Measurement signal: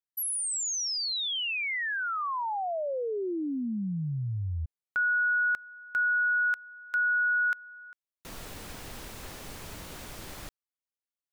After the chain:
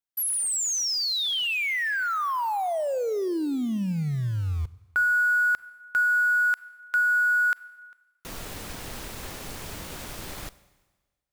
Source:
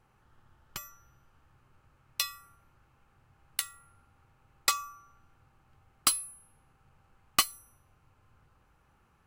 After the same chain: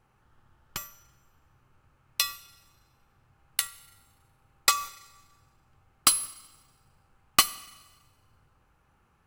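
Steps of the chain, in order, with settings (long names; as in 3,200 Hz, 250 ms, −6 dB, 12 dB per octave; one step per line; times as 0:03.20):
in parallel at −3 dB: bit reduction 7 bits
on the sum: four-comb reverb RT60 1.3 s, combs from 32 ms, DRR 18 dB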